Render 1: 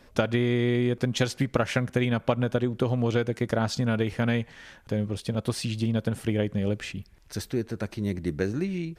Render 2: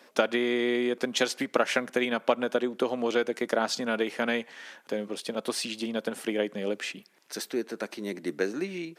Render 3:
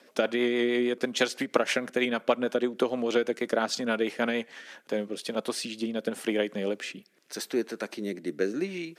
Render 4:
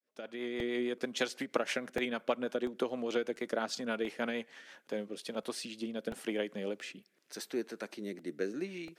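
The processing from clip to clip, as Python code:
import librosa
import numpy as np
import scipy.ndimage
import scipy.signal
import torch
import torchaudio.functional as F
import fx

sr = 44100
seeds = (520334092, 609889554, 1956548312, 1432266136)

y1 = scipy.signal.sosfilt(scipy.signal.bessel(6, 360.0, 'highpass', norm='mag', fs=sr, output='sos'), x)
y1 = y1 * librosa.db_to_amplitude(2.5)
y2 = fx.rotary_switch(y1, sr, hz=6.3, then_hz=0.8, switch_at_s=4.52)
y2 = y2 * librosa.db_to_amplitude(2.5)
y3 = fx.fade_in_head(y2, sr, length_s=0.8)
y3 = fx.buffer_crackle(y3, sr, first_s=0.6, period_s=0.69, block=64, kind='repeat')
y3 = y3 * librosa.db_to_amplitude(-7.5)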